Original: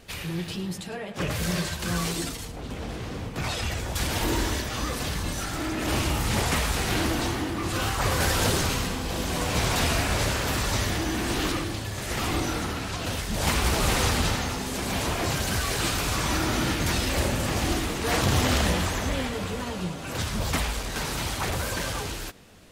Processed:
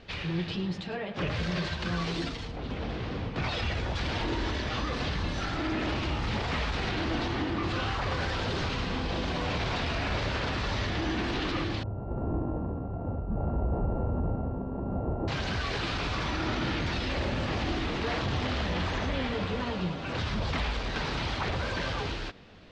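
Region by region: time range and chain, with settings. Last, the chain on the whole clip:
11.83–15.28 sample sorter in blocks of 32 samples + Chebyshev low-pass 770 Hz, order 3
whole clip: limiter -21 dBFS; LPF 4500 Hz 24 dB/oct

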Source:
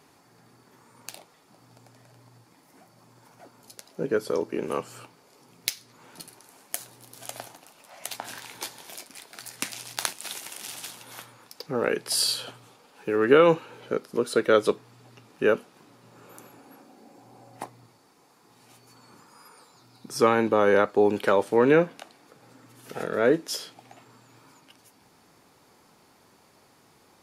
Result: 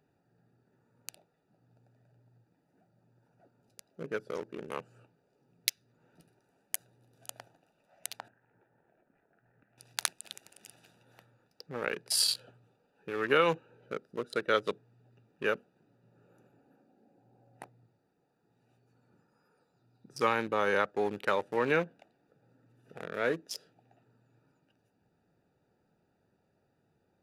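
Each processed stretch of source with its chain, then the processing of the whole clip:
8.28–9.78 LPF 1900 Hz 24 dB/oct + compressor 4:1, threshold -51 dBFS
whole clip: Wiener smoothing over 41 samples; EQ curve 180 Hz 0 dB, 260 Hz -5 dB, 2000 Hz +7 dB; gain -8.5 dB

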